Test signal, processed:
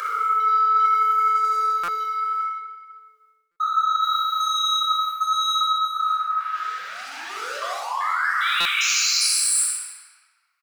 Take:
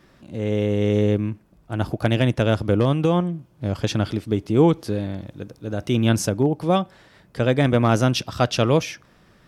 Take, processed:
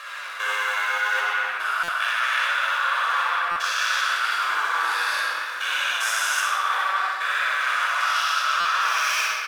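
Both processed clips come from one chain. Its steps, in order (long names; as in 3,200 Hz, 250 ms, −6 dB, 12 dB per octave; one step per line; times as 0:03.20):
spectrum averaged block by block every 400 ms
leveller curve on the samples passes 3
high-pass filter 1,100 Hz 24 dB per octave
parametric band 1,400 Hz +13 dB 0.86 octaves
rectangular room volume 3,200 cubic metres, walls mixed, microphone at 5.7 metres
flanger 0.68 Hz, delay 5 ms, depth 6.6 ms, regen +61%
reversed playback
downward compressor 6 to 1, threshold −24 dBFS
reversed playback
high-shelf EQ 2,700 Hz +7 dB
on a send: repeating echo 62 ms, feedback 49%, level −7.5 dB
on the sum: buffer that repeats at 0:01.83/0:03.51/0:08.60, samples 256, times 8
level +1 dB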